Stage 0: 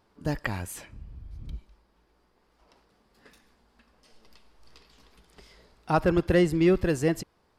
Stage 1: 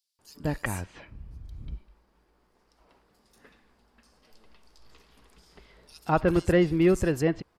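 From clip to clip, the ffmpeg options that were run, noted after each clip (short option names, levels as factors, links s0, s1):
-filter_complex "[0:a]acrossover=split=4100[s0][s1];[s0]adelay=190[s2];[s2][s1]amix=inputs=2:normalize=0"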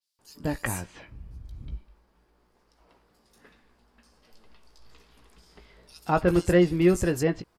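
-filter_complex "[0:a]asplit=2[s0][s1];[s1]adelay=17,volume=0.335[s2];[s0][s2]amix=inputs=2:normalize=0,adynamicequalizer=threshold=0.00355:dfrequency=4700:dqfactor=0.7:tfrequency=4700:tqfactor=0.7:attack=5:release=100:ratio=0.375:range=2.5:mode=boostabove:tftype=highshelf"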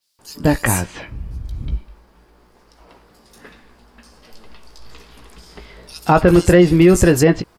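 -af "alimiter=level_in=5.62:limit=0.891:release=50:level=0:latency=1,volume=0.891"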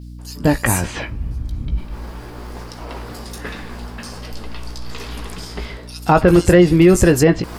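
-af "areverse,acompressor=mode=upward:threshold=0.126:ratio=2.5,areverse,aeval=exprs='val(0)+0.0224*(sin(2*PI*60*n/s)+sin(2*PI*2*60*n/s)/2+sin(2*PI*3*60*n/s)/3+sin(2*PI*4*60*n/s)/4+sin(2*PI*5*60*n/s)/5)':c=same"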